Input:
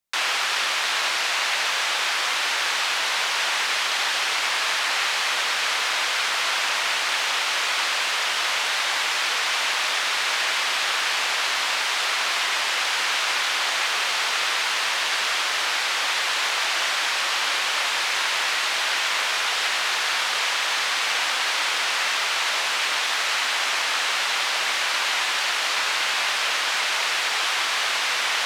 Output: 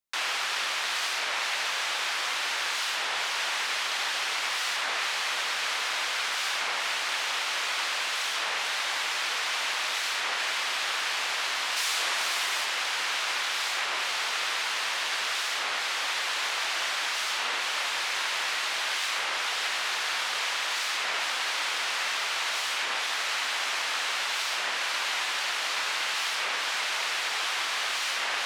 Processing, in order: 11.76–12.64 s: treble shelf 4.6 kHz -> 9.5 kHz +8 dB; warped record 33 1/3 rpm, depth 250 cents; trim -6 dB

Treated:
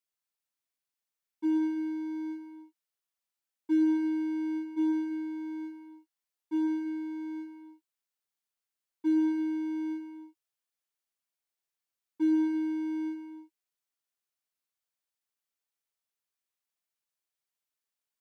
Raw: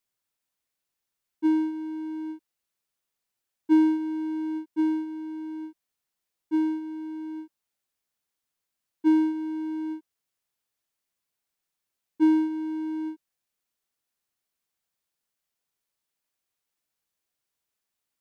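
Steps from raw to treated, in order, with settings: waveshaping leveller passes 1; bass shelf 350 Hz -7.5 dB; gated-style reverb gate 350 ms flat, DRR 5 dB; trim -5.5 dB

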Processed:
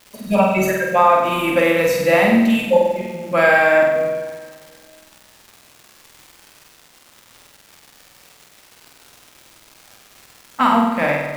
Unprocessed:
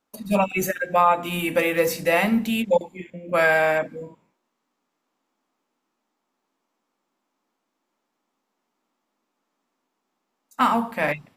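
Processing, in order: treble shelf 6.3 kHz -7.5 dB; crackle 340 per s -36 dBFS; flutter echo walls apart 8.2 m, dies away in 0.87 s; reverberation RT60 2.0 s, pre-delay 108 ms, DRR 13.5 dB; trim +3 dB

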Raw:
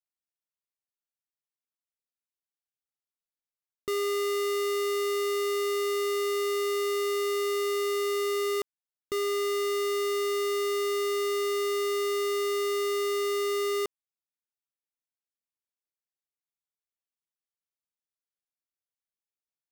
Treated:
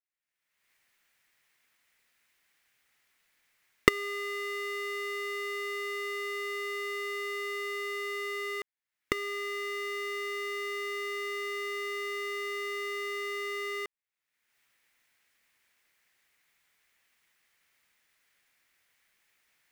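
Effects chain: recorder AGC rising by 42 dB/s; peaking EQ 2 kHz +14.5 dB 1.1 oct; trim -11 dB

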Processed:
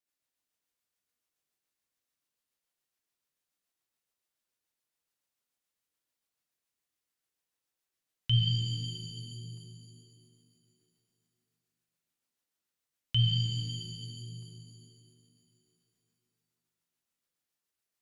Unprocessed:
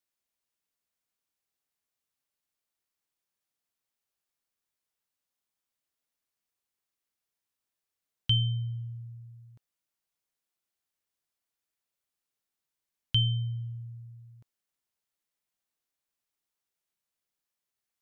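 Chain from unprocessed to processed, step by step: bass shelf 180 Hz -3.5 dB; rotary cabinet horn 7 Hz; pitch-shifted reverb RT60 2.7 s, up +7 st, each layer -8 dB, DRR -0.5 dB

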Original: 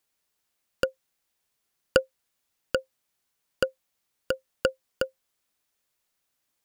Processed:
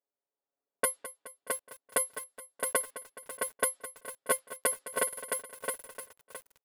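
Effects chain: comb filter that takes the minimum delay 4.7 ms; level rider gain up to 4.5 dB; careless resampling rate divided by 4×, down none, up zero stuff; gate -43 dBFS, range -12 dB; level-controlled noise filter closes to 690 Hz, open at -20 dBFS; cabinet simulation 330–9200 Hz, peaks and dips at 500 Hz +5 dB, 2.4 kHz -4 dB, 6.2 kHz -9 dB; comb 7.2 ms, depth 84%; peak limiter -17 dBFS, peak gain reduction 11.5 dB; treble shelf 7 kHz +8 dB; on a send: feedback delay 211 ms, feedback 57%, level -14.5 dB; on the sum: buffer glitch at 5.08 s, samples 2048, times 2; bit-crushed delay 666 ms, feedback 35%, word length 8-bit, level -4 dB

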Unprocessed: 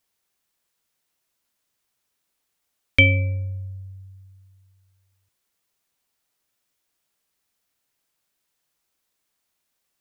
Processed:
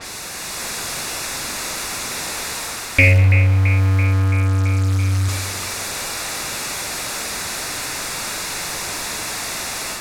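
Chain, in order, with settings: jump at every zero crossing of -21.5 dBFS; band-stop 3.1 kHz, Q 5.7; level-controlled noise filter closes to 780 Hz, open at -25 dBFS; level rider gain up to 5 dB; on a send: feedback echo behind a band-pass 334 ms, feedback 74%, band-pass 1.3 kHz, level -8 dB; on the sum: spring tank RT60 1.2 s, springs 42 ms, chirp 25 ms, DRR 7.5 dB; loudspeaker Doppler distortion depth 0.21 ms

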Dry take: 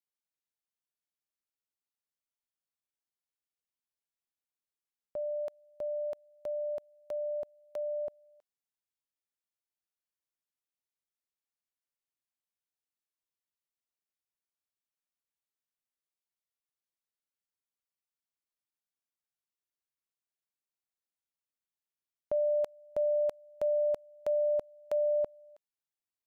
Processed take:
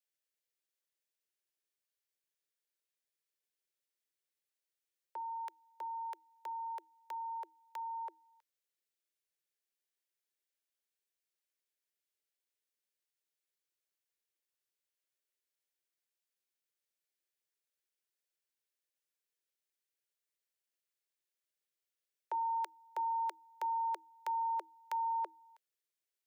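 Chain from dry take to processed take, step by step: high-order bell 580 Hz -9 dB; frequency shift +320 Hz; trim +2.5 dB

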